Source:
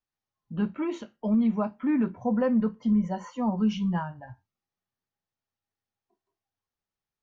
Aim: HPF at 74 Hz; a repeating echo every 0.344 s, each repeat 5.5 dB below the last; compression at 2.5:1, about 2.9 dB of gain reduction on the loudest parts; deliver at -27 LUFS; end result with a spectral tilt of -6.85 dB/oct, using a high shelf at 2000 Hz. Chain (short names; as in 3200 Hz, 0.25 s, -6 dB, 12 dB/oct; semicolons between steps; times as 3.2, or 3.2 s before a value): HPF 74 Hz; high shelf 2000 Hz -4 dB; compressor 2.5:1, threshold -24 dBFS; feedback echo 0.344 s, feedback 53%, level -5.5 dB; gain +2 dB